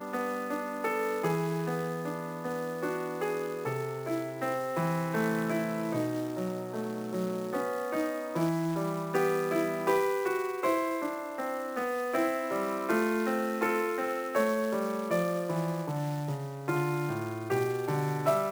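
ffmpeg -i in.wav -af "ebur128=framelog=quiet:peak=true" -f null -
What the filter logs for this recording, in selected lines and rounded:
Integrated loudness:
  I:         -31.3 LUFS
  Threshold: -41.3 LUFS
Loudness range:
  LRA:         2.9 LU
  Threshold: -51.2 LUFS
  LRA low:   -32.7 LUFS
  LRA high:  -29.8 LUFS
True peak:
  Peak:      -12.8 dBFS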